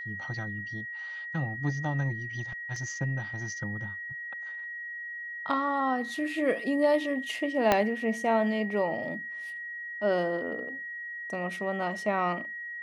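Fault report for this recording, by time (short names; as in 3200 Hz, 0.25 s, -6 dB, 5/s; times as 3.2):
tone 1900 Hz -36 dBFS
2.76 gap 2.6 ms
7.72 pop -8 dBFS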